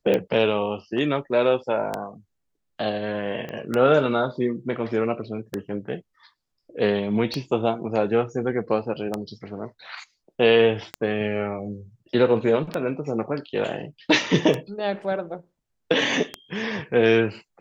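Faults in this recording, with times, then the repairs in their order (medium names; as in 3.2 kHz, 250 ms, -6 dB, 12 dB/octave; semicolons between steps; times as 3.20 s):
tick 33 1/3 rpm -11 dBFS
3.49 s: pop -21 dBFS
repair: de-click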